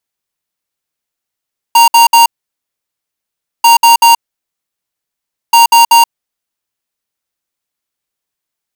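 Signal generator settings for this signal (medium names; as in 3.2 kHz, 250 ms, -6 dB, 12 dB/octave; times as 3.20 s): beep pattern square 931 Hz, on 0.13 s, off 0.06 s, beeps 3, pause 1.38 s, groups 3, -4.5 dBFS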